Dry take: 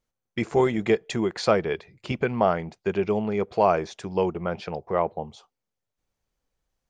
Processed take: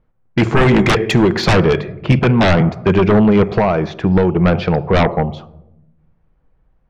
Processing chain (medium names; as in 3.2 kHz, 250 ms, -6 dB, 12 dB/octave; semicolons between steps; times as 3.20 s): 3.49–4.36 s: compression 4:1, threshold -26 dBFS, peak gain reduction 10 dB; simulated room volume 2500 m³, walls furnished, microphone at 0.59 m; level-controlled noise filter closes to 1.6 kHz, open at -20.5 dBFS; 0.71–1.12 s: peaking EQ 1.4 kHz +6.5 dB 2.1 oct; sine folder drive 15 dB, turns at -6 dBFS; tone controls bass +7 dB, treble -6 dB; 2.19–2.61 s: three bands expanded up and down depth 70%; trim -3.5 dB